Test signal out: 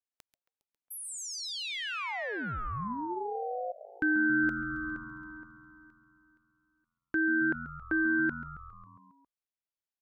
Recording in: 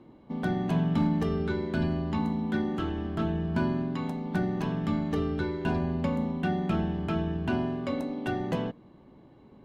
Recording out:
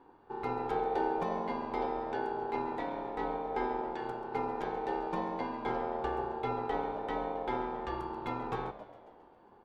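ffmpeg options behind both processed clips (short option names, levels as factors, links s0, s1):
-filter_complex "[0:a]highshelf=f=5300:g=-7.5,asplit=8[s0][s1][s2][s3][s4][s5][s6][s7];[s1]adelay=136,afreqshift=-85,volume=0.188[s8];[s2]adelay=272,afreqshift=-170,volume=0.123[s9];[s3]adelay=408,afreqshift=-255,volume=0.0794[s10];[s4]adelay=544,afreqshift=-340,volume=0.0519[s11];[s5]adelay=680,afreqshift=-425,volume=0.0335[s12];[s6]adelay=816,afreqshift=-510,volume=0.0219[s13];[s7]adelay=952,afreqshift=-595,volume=0.0141[s14];[s0][s8][s9][s10][s11][s12][s13][s14]amix=inputs=8:normalize=0,aeval=exprs='val(0)*sin(2*PI*620*n/s)':c=same,volume=0.668"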